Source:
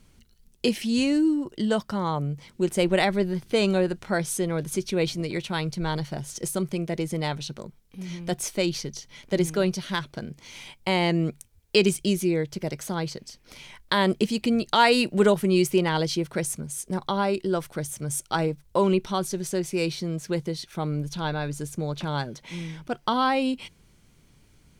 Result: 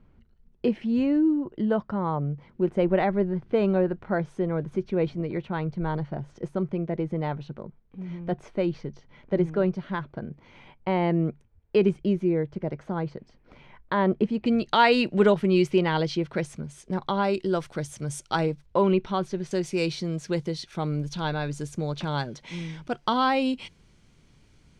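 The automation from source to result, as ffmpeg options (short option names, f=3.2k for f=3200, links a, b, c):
-af "asetnsamples=n=441:p=0,asendcmd='14.46 lowpass f 3500;17.24 lowpass f 5900;18.66 lowpass f 2900;19.51 lowpass f 6700',lowpass=1.4k"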